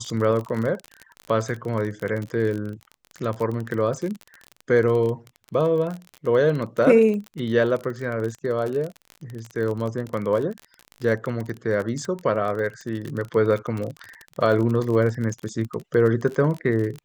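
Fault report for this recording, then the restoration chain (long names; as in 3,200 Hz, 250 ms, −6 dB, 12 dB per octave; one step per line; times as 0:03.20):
surface crackle 33 per second −27 dBFS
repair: click removal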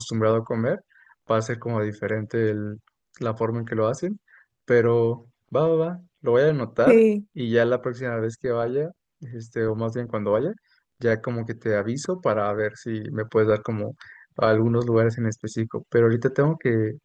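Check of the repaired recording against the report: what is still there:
none of them is left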